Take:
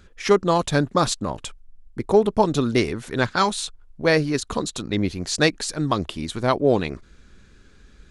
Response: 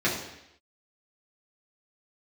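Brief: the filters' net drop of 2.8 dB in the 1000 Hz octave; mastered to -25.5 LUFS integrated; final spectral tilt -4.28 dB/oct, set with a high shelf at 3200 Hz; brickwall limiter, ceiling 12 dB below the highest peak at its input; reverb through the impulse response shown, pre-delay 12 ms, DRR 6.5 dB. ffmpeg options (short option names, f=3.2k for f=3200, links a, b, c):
-filter_complex "[0:a]equalizer=f=1k:t=o:g=-4,highshelf=f=3.2k:g=5,alimiter=limit=-14dB:level=0:latency=1,asplit=2[a][b];[1:a]atrim=start_sample=2205,adelay=12[c];[b][c]afir=irnorm=-1:irlink=0,volume=-20dB[d];[a][d]amix=inputs=2:normalize=0,volume=-0.5dB"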